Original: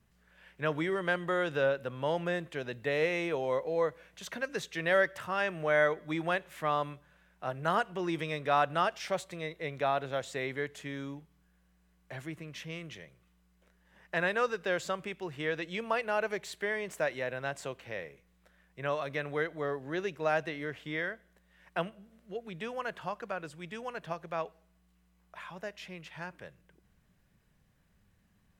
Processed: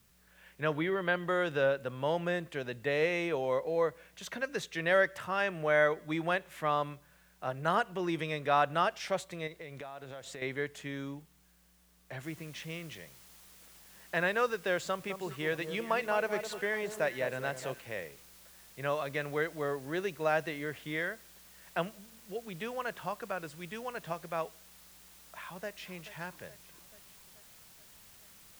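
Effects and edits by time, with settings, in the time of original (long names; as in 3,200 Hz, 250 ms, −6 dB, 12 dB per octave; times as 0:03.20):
0:00.77–0:01.28: time-frequency box erased 4,600–9,500 Hz
0:09.47–0:10.42: downward compressor 12 to 1, threshold −40 dBFS
0:12.23: noise floor change −69 dB −57 dB
0:14.79–0:17.79: delay that swaps between a low-pass and a high-pass 206 ms, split 1,200 Hz, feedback 53%, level −8 dB
0:25.42–0:25.86: delay throw 430 ms, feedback 65%, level −15.5 dB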